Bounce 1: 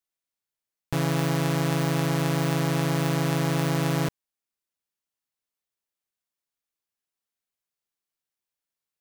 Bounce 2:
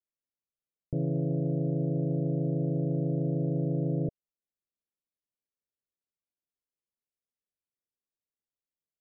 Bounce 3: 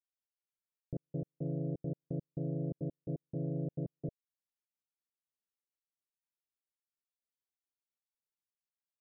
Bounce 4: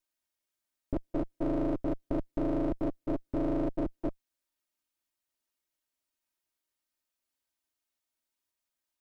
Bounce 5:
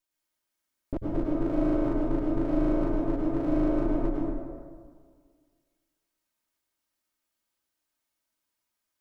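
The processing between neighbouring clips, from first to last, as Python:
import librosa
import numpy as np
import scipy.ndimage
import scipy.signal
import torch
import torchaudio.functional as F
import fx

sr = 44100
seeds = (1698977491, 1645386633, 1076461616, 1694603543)

y1 = scipy.signal.sosfilt(scipy.signal.butter(12, 630.0, 'lowpass', fs=sr, output='sos'), x)
y1 = y1 * 10.0 ** (-3.5 / 20.0)
y2 = fx.step_gate(y1, sr, bpm=171, pattern='..x..xxxx.x', floor_db=-60.0, edge_ms=4.5)
y2 = y2 * 10.0 ** (-7.0 / 20.0)
y3 = fx.lower_of_two(y2, sr, delay_ms=3.2)
y3 = y3 * 10.0 ** (9.0 / 20.0)
y4 = fx.rev_plate(y3, sr, seeds[0], rt60_s=1.8, hf_ratio=0.45, predelay_ms=85, drr_db=-4.0)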